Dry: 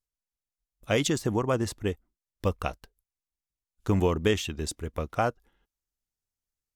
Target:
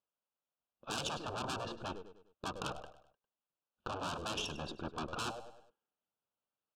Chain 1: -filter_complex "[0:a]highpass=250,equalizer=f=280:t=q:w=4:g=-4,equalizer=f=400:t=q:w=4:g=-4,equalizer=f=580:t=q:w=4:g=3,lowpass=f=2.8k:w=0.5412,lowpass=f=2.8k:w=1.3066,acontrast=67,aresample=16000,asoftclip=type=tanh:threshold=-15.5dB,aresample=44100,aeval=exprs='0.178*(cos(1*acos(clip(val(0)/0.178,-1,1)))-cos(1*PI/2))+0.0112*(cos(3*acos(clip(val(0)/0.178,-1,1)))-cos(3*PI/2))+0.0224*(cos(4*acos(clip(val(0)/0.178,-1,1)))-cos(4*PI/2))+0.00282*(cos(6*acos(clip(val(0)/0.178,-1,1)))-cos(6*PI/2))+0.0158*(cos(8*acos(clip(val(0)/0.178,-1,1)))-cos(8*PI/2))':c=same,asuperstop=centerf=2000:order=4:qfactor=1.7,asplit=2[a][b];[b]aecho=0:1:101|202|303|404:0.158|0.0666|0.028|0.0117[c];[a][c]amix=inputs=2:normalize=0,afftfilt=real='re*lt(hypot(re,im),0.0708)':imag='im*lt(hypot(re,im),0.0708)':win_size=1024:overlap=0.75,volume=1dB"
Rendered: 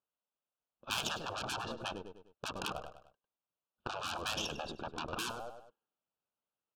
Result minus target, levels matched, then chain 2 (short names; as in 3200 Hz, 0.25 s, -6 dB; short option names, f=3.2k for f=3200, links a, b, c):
soft clip: distortion -9 dB
-filter_complex "[0:a]highpass=250,equalizer=f=280:t=q:w=4:g=-4,equalizer=f=400:t=q:w=4:g=-4,equalizer=f=580:t=q:w=4:g=3,lowpass=f=2.8k:w=0.5412,lowpass=f=2.8k:w=1.3066,acontrast=67,aresample=16000,asoftclip=type=tanh:threshold=-27.5dB,aresample=44100,aeval=exprs='0.178*(cos(1*acos(clip(val(0)/0.178,-1,1)))-cos(1*PI/2))+0.0112*(cos(3*acos(clip(val(0)/0.178,-1,1)))-cos(3*PI/2))+0.0224*(cos(4*acos(clip(val(0)/0.178,-1,1)))-cos(4*PI/2))+0.00282*(cos(6*acos(clip(val(0)/0.178,-1,1)))-cos(6*PI/2))+0.0158*(cos(8*acos(clip(val(0)/0.178,-1,1)))-cos(8*PI/2))':c=same,asuperstop=centerf=2000:order=4:qfactor=1.7,asplit=2[a][b];[b]aecho=0:1:101|202|303|404:0.158|0.0666|0.028|0.0117[c];[a][c]amix=inputs=2:normalize=0,afftfilt=real='re*lt(hypot(re,im),0.0708)':imag='im*lt(hypot(re,im),0.0708)':win_size=1024:overlap=0.75,volume=1dB"